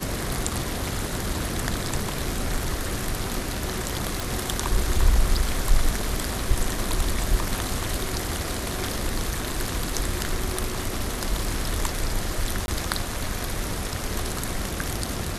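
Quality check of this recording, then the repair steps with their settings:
4.20 s: pop
12.66–12.68 s: dropout 21 ms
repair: de-click; interpolate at 12.66 s, 21 ms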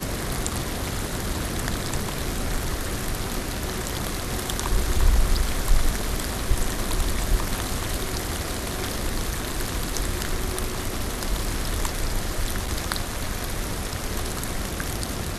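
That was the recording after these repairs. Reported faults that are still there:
nothing left

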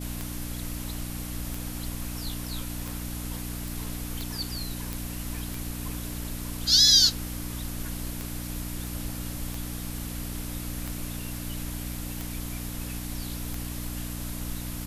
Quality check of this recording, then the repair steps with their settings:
hum 60 Hz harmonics 5 -36 dBFS
tick 45 rpm
3.68 s: pop
4.93 s: pop
8.87 s: pop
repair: de-click; de-hum 60 Hz, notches 5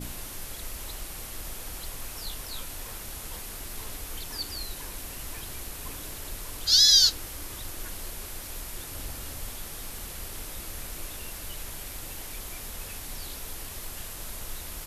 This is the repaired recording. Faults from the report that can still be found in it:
nothing left

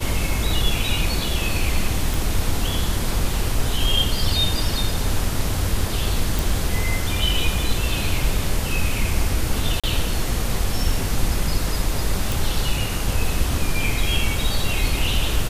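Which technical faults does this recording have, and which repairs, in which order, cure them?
2.14 s: pop
6.39 s: pop
9.80–9.84 s: dropout 36 ms
12.32 s: pop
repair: de-click; interpolate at 9.80 s, 36 ms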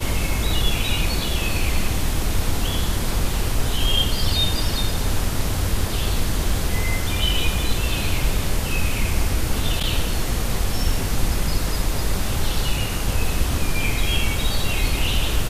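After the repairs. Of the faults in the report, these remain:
nothing left

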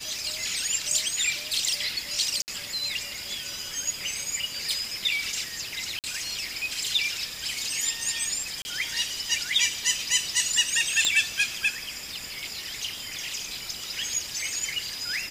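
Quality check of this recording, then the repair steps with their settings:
2.42–2.48 s: dropout 59 ms
5.99–6.04 s: dropout 48 ms
8.62–8.65 s: dropout 30 ms
11.05 s: pop -9 dBFS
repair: de-click; interpolate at 2.42 s, 59 ms; interpolate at 5.99 s, 48 ms; interpolate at 8.62 s, 30 ms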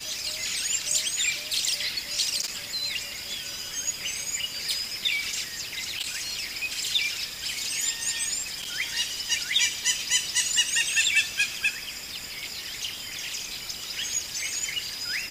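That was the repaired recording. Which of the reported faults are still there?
nothing left

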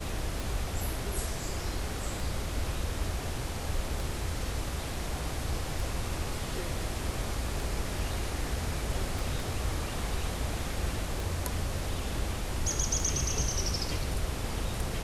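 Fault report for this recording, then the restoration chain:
tick 33 1/3 rpm
9.19 s: pop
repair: de-click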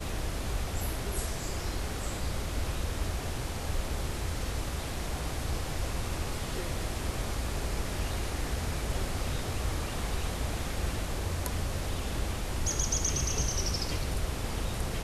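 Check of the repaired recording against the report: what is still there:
9.19 s: pop

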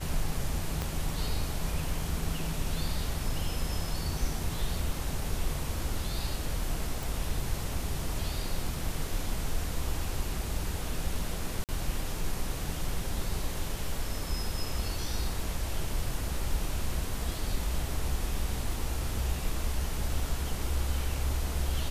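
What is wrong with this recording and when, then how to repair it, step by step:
0.82 s: pop -17 dBFS
7.03 s: pop
11.64–11.69 s: dropout 48 ms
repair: de-click; interpolate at 11.64 s, 48 ms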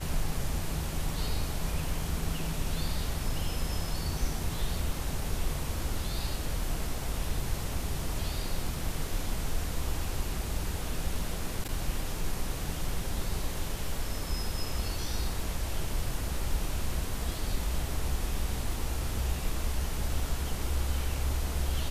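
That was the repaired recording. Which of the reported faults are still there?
0.82 s: pop

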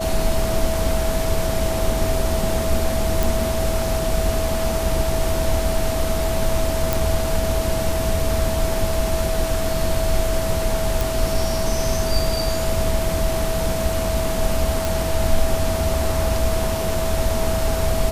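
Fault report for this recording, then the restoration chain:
whine 650 Hz -24 dBFS
3.23 s: pop
6.93 s: pop
11.01 s: pop
14.85 s: pop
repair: de-click; band-stop 650 Hz, Q 30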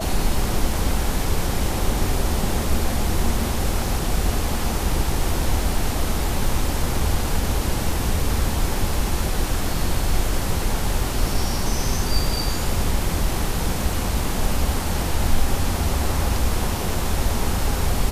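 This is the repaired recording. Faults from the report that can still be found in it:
nothing left

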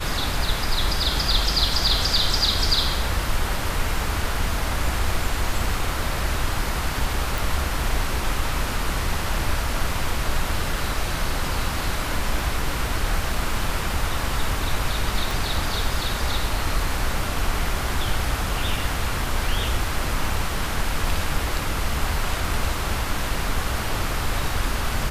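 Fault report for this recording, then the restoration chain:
7.38 s: pop
15.31 s: pop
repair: de-click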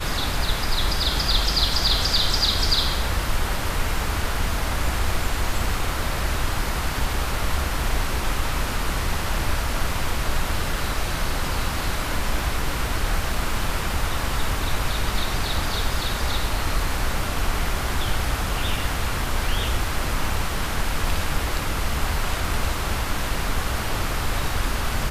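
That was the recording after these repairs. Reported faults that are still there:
15.31 s: pop

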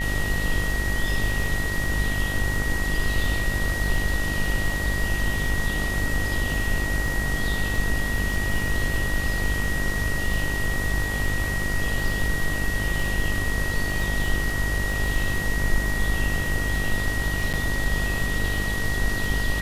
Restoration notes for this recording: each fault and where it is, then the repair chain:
buzz 50 Hz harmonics 33 -29 dBFS
crackle 23 per s -29 dBFS
whine 1.9 kHz -28 dBFS
17.53–17.54 s: dropout 7.7 ms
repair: de-click; de-hum 50 Hz, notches 33; band-stop 1.9 kHz, Q 30; interpolate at 17.53 s, 7.7 ms

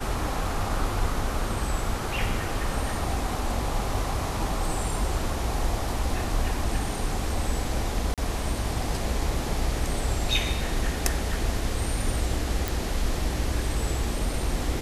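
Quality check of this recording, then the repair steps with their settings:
8.14–8.18 s: dropout 37 ms
12.68 s: pop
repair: de-click; interpolate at 8.14 s, 37 ms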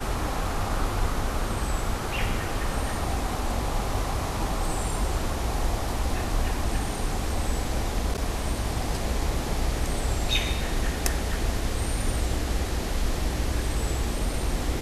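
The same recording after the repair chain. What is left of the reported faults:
nothing left

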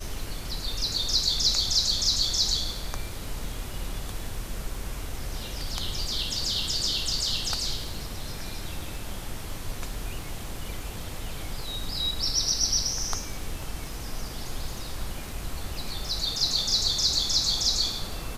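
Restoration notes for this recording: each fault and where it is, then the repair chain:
crackle 20 per s -37 dBFS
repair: de-click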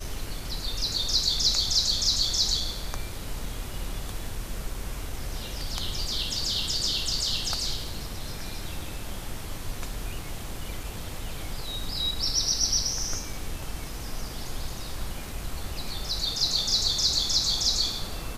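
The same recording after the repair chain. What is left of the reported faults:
nothing left

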